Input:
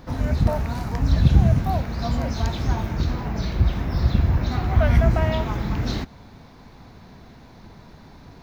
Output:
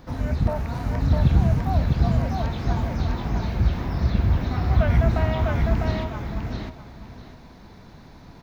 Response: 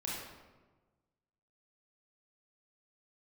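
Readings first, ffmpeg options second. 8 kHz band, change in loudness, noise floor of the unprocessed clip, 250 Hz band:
no reading, -1.0 dB, -47 dBFS, -0.5 dB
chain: -filter_complex "[0:a]acrossover=split=3500[s0][s1];[s1]acompressor=threshold=0.00398:ratio=4:attack=1:release=60[s2];[s0][s2]amix=inputs=2:normalize=0,aecho=1:1:652|1304|1956:0.708|0.156|0.0343,volume=0.75"

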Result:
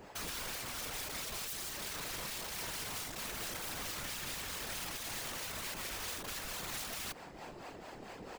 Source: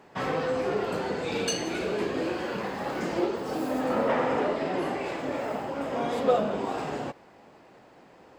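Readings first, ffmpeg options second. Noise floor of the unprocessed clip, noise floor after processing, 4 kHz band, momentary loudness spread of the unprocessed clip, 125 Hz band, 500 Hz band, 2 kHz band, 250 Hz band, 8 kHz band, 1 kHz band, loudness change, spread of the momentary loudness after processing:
-54 dBFS, -51 dBFS, -1.5 dB, 7 LU, -11.5 dB, -22.5 dB, -7.0 dB, -20.5 dB, +2.0 dB, -15.0 dB, -10.5 dB, 9 LU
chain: -filter_complex "[0:a]asplit=2[s0][s1];[s1]asoftclip=type=hard:threshold=0.0794,volume=0.501[s2];[s0][s2]amix=inputs=2:normalize=0,acrossover=split=440[s3][s4];[s3]aeval=exprs='val(0)*(1-0.7/2+0.7/2*cos(2*PI*4.5*n/s))':c=same[s5];[s4]aeval=exprs='val(0)*(1-0.7/2-0.7/2*cos(2*PI*4.5*n/s))':c=same[s6];[s5][s6]amix=inputs=2:normalize=0,areverse,acompressor=threshold=0.0126:ratio=12,areverse,aeval=exprs='(mod(100*val(0)+1,2)-1)/100':c=same,highshelf=f=3400:g=8,afftfilt=real='hypot(re,im)*cos(2*PI*random(0))':imag='hypot(re,im)*sin(2*PI*random(1))':win_size=512:overlap=0.75,alimiter=level_in=6.68:limit=0.0631:level=0:latency=1:release=417,volume=0.15,lowshelf=f=68:g=9.5,asplit=2[s7][s8];[s8]adelay=110.8,volume=0.0447,highshelf=f=4000:g=-2.49[s9];[s7][s9]amix=inputs=2:normalize=0,volume=3.16"

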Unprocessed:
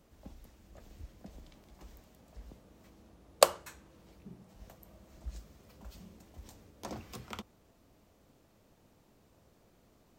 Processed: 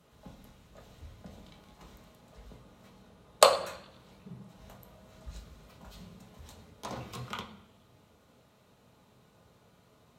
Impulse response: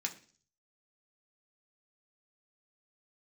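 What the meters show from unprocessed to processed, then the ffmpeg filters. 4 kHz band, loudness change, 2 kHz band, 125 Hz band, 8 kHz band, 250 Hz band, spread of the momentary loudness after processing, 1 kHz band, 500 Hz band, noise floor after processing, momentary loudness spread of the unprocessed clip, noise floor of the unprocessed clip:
+4.5 dB, +5.0 dB, +4.5 dB, +3.0 dB, +2.0 dB, +1.5 dB, 20 LU, +5.5 dB, +3.5 dB, -64 dBFS, 25 LU, -66 dBFS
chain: -filter_complex "[1:a]atrim=start_sample=2205,asetrate=25578,aresample=44100[s0];[0:a][s0]afir=irnorm=-1:irlink=0"

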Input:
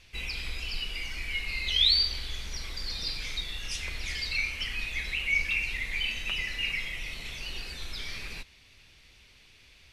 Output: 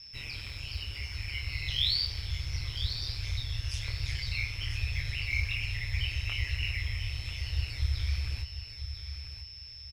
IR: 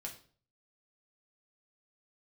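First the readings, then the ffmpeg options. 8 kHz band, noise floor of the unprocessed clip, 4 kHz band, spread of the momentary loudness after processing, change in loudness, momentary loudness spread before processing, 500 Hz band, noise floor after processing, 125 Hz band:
-5.5 dB, -57 dBFS, -4.5 dB, 10 LU, -3.5 dB, 13 LU, -6.0 dB, -46 dBFS, +11.5 dB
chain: -af "acrusher=bits=8:mode=log:mix=0:aa=0.000001,flanger=delay=18:depth=5.9:speed=1.2,aeval=exprs='val(0)+0.00708*sin(2*PI*5300*n/s)':c=same,asubboost=boost=4.5:cutoff=54,aecho=1:1:994|1988|2982:0.316|0.0854|0.0231,aeval=exprs='val(0)*sin(2*PI*70*n/s)':c=same"

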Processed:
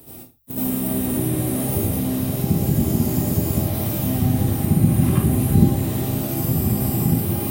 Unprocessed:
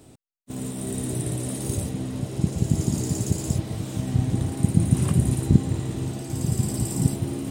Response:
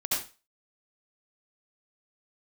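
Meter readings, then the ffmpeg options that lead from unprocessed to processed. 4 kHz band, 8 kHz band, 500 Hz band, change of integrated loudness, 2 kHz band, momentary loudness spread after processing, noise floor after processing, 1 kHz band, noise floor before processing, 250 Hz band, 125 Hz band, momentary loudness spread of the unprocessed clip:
+3.5 dB, +2.0 dB, +6.0 dB, +5.0 dB, +6.0 dB, 6 LU, -40 dBFS, +8.5 dB, -51 dBFS, +6.0 dB, +3.5 dB, 9 LU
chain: -filter_complex "[0:a]acrossover=split=3200[s0][s1];[s1]acompressor=threshold=0.00631:ratio=4:attack=1:release=60[s2];[s0][s2]amix=inputs=2:normalize=0,aexciter=amount=12:drive=5.8:freq=11000[s3];[1:a]atrim=start_sample=2205,afade=t=out:st=0.29:d=0.01,atrim=end_sample=13230[s4];[s3][s4]afir=irnorm=-1:irlink=0,asplit=2[s5][s6];[s6]acompressor=threshold=0.0708:ratio=6,volume=0.891[s7];[s5][s7]amix=inputs=2:normalize=0,bandreject=f=48.96:t=h:w=4,bandreject=f=97.92:t=h:w=4,volume=0.668"

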